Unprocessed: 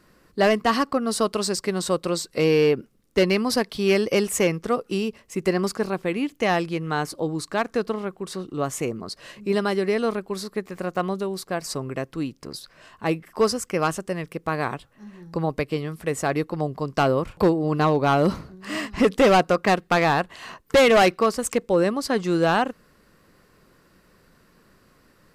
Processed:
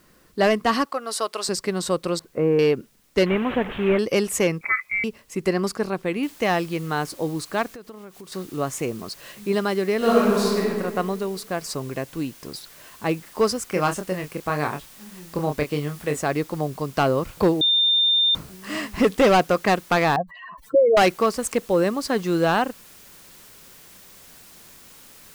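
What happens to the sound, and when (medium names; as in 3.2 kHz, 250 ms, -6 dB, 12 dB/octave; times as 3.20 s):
0.85–1.49 s: high-pass 580 Hz
2.19–2.59 s: Bessel low-pass 1.2 kHz, order 4
3.26–3.99 s: one-bit delta coder 16 kbps, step -25.5 dBFS
4.61–5.04 s: frequency inversion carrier 2.5 kHz
6.23 s: noise floor step -63 dB -48 dB
7.69–8.32 s: compression 4:1, threshold -39 dBFS
9.97–10.58 s: reverb throw, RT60 1.7 s, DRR -8 dB
11.80–12.48 s: band-stop 1.3 kHz
13.69–16.17 s: doubling 27 ms -6 dB
17.61–18.35 s: bleep 3.61 kHz -15.5 dBFS
20.16–20.97 s: spectral contrast enhancement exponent 3.9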